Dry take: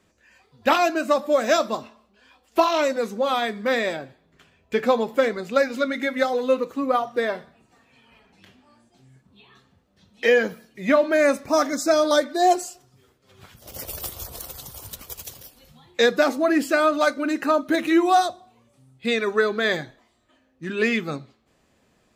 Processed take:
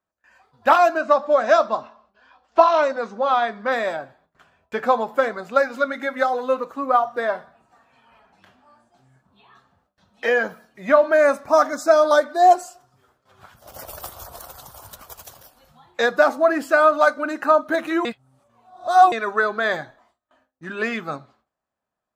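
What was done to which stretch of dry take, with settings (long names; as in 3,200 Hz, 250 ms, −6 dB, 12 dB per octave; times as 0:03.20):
0:00.97–0:03.72: low-pass filter 6,100 Hz 24 dB per octave
0:18.05–0:19.12: reverse
whole clip: noise gate with hold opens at −51 dBFS; flat-topped bell 980 Hz +10.5 dB; level −5 dB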